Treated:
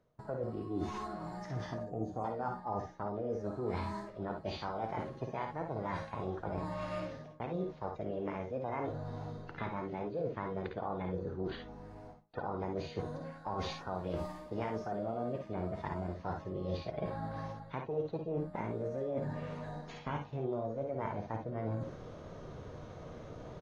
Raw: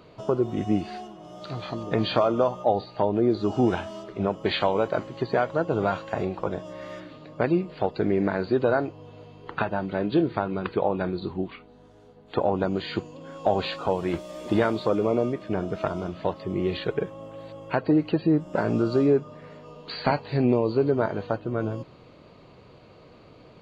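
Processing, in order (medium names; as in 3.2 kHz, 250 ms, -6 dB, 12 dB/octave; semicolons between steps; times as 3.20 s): time-frequency box 1.85–2.25 s, 790–4500 Hz -26 dB; formant shift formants +6 st; tilt EQ -2.5 dB/octave; reverse; compression 6:1, threshold -35 dBFS, peak gain reduction 20 dB; reverse; gate with hold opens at -40 dBFS; on a send: early reflections 54 ms -6.5 dB, 67 ms -10 dB; on the sum: trim -1.5 dB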